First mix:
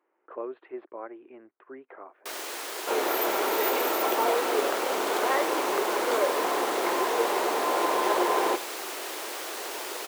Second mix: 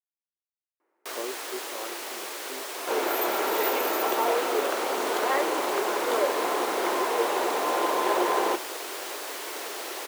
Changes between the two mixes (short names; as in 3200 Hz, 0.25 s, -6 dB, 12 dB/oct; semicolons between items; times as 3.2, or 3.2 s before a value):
speech: entry +0.80 s; first sound: entry -1.20 s